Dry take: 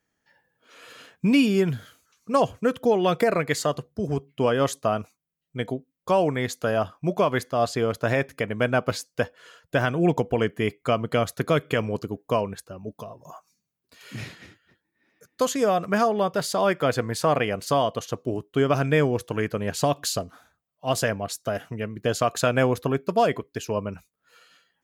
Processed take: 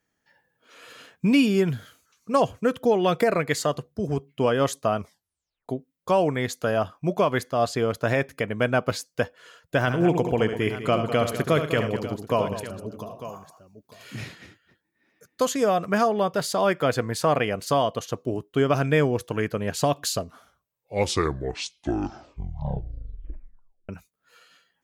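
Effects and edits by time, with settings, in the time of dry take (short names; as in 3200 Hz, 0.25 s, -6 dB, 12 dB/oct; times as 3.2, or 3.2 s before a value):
4.98 tape stop 0.71 s
9.8–14.15 tapped delay 72/111/200/900 ms -8.5/-16/-12/-14 dB
20.14 tape stop 3.75 s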